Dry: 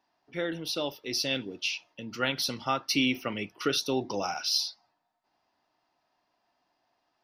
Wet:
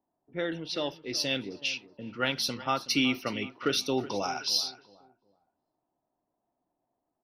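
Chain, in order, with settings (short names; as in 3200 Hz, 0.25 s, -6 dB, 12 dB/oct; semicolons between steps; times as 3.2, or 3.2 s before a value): feedback echo 0.373 s, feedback 33%, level -16.5 dB; low-pass opened by the level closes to 520 Hz, open at -26 dBFS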